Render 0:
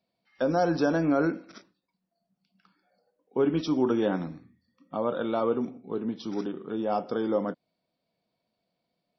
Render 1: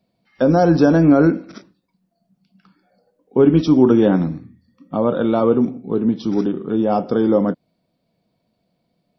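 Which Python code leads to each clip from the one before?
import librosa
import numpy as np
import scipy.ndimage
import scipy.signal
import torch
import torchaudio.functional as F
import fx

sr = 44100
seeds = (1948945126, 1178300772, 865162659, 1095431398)

y = fx.low_shelf(x, sr, hz=360.0, db=11.5)
y = y * librosa.db_to_amplitude(6.0)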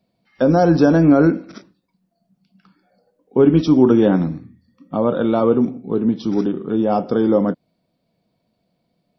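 y = x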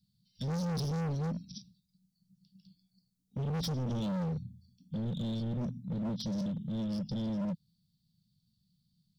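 y = scipy.signal.sosfilt(scipy.signal.cheby2(4, 40, [320.0, 2100.0], 'bandstop', fs=sr, output='sos'), x)
y = np.clip(10.0 ** (32.0 / 20.0) * y, -1.0, 1.0) / 10.0 ** (32.0 / 20.0)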